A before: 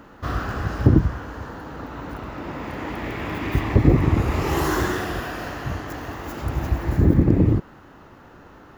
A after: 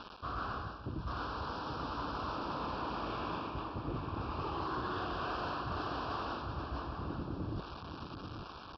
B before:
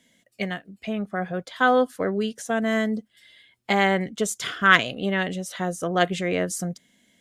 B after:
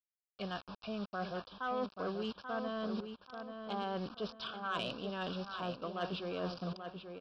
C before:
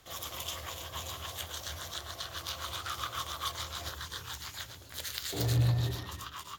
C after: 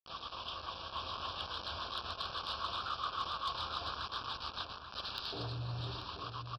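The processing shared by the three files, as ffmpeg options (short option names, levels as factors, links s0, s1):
-filter_complex "[0:a]aeval=exprs='val(0)+0.00224*(sin(2*PI*50*n/s)+sin(2*PI*2*50*n/s)/2+sin(2*PI*3*50*n/s)/3+sin(2*PI*4*50*n/s)/4+sin(2*PI*5*50*n/s)/5)':c=same,aresample=11025,acrusher=bits=6:mix=0:aa=0.000001,aresample=44100,dynaudnorm=f=180:g=11:m=1.5,equalizer=f=1100:w=2.7:g=7,areverse,acompressor=threshold=0.0398:ratio=8,areverse,asuperstop=centerf=2000:order=4:qfactor=2.1,aeval=exprs='0.2*(cos(1*acos(clip(val(0)/0.2,-1,1)))-cos(1*PI/2))+0.02*(cos(5*acos(clip(val(0)/0.2,-1,1)))-cos(5*PI/2))':c=same,lowshelf=f=400:g=-5.5,asplit=2[s0][s1];[s1]adelay=835,lowpass=f=3000:p=1,volume=0.447,asplit=2[s2][s3];[s3]adelay=835,lowpass=f=3000:p=1,volume=0.35,asplit=2[s4][s5];[s5]adelay=835,lowpass=f=3000:p=1,volume=0.35,asplit=2[s6][s7];[s7]adelay=835,lowpass=f=3000:p=1,volume=0.35[s8];[s0][s2][s4][s6][s8]amix=inputs=5:normalize=0,volume=0.422"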